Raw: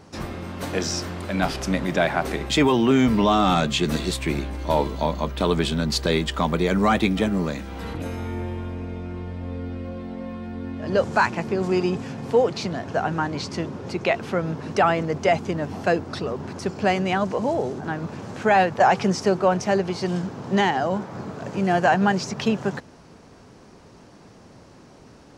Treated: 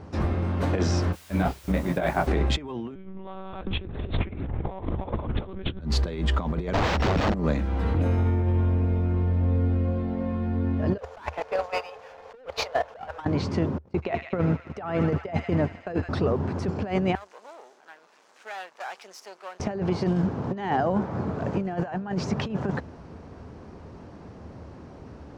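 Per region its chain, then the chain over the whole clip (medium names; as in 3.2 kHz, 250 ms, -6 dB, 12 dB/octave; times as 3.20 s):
1.12–2.26 s: gate -27 dBFS, range -32 dB + added noise blue -35 dBFS + detune thickener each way 33 cents
2.95–5.81 s: power-law waveshaper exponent 0.7 + monotone LPC vocoder at 8 kHz 190 Hz + tape noise reduction on one side only decoder only
6.73–7.34 s: sorted samples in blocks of 8 samples + integer overflow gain 19.5 dB + decimation joined by straight lines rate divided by 4×
10.98–13.25 s: brick-wall FIR band-pass 430–7400 Hz + waveshaping leveller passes 5 + gate -15 dBFS, range -25 dB
13.78–16.09 s: gate -30 dBFS, range -36 dB + feedback echo behind a high-pass 79 ms, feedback 74%, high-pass 1.6 kHz, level -12 dB
17.15–19.60 s: partial rectifier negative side -12 dB + high-pass 390 Hz + differentiator
whole clip: low-pass 1.3 kHz 6 dB/octave; peaking EQ 76 Hz +12 dB 0.49 oct; compressor with a negative ratio -25 dBFS, ratio -0.5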